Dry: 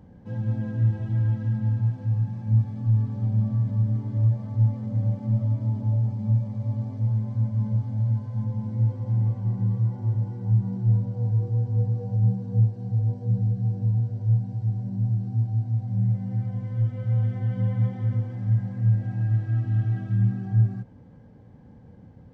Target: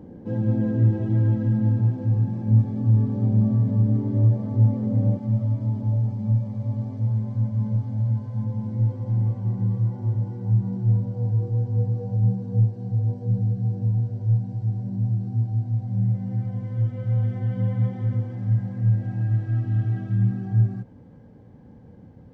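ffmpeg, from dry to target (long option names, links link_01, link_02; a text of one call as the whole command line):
ffmpeg -i in.wav -af "asetnsamples=nb_out_samples=441:pad=0,asendcmd='5.17 equalizer g 4',equalizer=frequency=350:width=0.86:gain=15" out.wav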